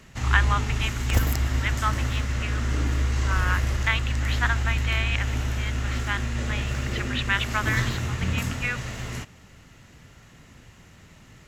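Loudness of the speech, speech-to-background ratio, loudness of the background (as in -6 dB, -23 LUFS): -30.0 LUFS, -2.5 dB, -27.5 LUFS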